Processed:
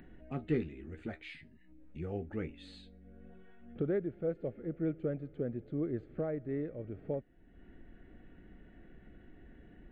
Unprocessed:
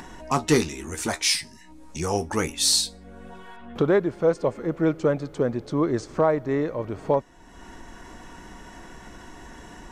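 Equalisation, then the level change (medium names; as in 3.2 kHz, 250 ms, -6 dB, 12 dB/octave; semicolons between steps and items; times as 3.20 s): tape spacing loss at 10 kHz 42 dB; static phaser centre 2.4 kHz, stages 4; -9.0 dB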